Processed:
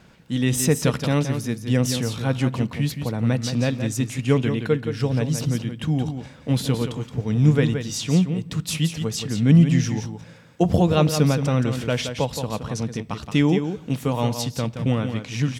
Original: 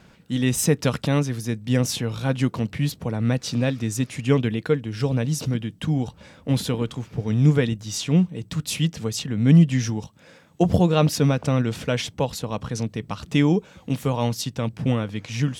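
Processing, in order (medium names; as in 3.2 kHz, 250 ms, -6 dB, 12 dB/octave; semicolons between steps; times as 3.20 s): delay 172 ms -8 dB; on a send at -21 dB: reverberation RT60 1.0 s, pre-delay 8 ms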